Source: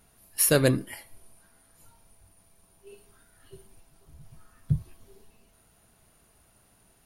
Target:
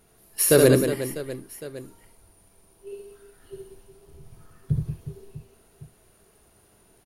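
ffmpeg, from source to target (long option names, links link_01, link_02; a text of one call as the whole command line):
ffmpeg -i in.wav -af "equalizer=frequency=400:width=2.2:gain=9,aecho=1:1:70|182|361.2|647.9|1107:0.631|0.398|0.251|0.158|0.1" out.wav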